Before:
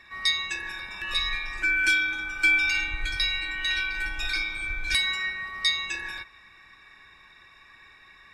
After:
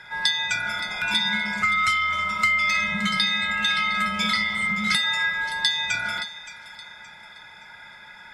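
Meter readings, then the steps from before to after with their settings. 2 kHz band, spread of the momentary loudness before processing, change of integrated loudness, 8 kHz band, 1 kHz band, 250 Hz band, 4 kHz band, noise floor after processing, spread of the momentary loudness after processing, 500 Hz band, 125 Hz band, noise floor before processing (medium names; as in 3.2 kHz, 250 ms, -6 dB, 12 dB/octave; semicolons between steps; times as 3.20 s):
+2.5 dB, 11 LU, +3.5 dB, +4.0 dB, +14.5 dB, +13.5 dB, +3.5 dB, -46 dBFS, 11 LU, no reading, +6.5 dB, -54 dBFS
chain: bass shelf 250 Hz -6.5 dB; compression 6:1, threshold -27 dBFS, peak gain reduction 9.5 dB; frequency shift -230 Hz; feedback echo behind a high-pass 571 ms, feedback 34%, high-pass 2.9 kHz, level -12 dB; trim +8 dB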